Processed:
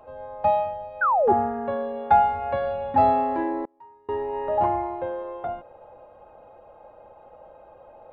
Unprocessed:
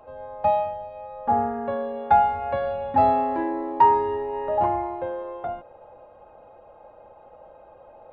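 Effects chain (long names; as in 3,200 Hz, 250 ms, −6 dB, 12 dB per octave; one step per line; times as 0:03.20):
0:01.01–0:01.33: sound drawn into the spectrogram fall 350–1,600 Hz −20 dBFS
0:03.64–0:04.09: gate with flip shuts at −24 dBFS, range −33 dB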